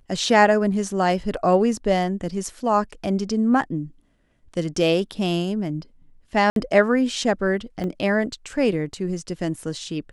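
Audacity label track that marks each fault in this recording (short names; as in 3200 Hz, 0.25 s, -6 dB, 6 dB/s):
6.500000	6.560000	gap 62 ms
7.840000	7.840000	gap 2.2 ms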